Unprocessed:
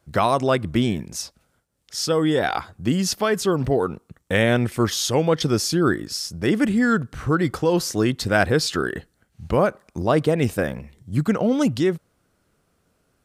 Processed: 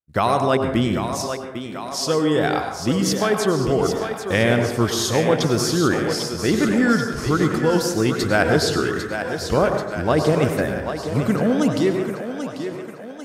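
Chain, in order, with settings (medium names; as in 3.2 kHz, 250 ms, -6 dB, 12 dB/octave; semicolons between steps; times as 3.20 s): thinning echo 792 ms, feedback 63%, high-pass 220 Hz, level -8 dB; vibrato 0.78 Hz 31 cents; expander -31 dBFS; plate-style reverb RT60 0.91 s, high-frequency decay 0.4×, pre-delay 85 ms, DRR 5.5 dB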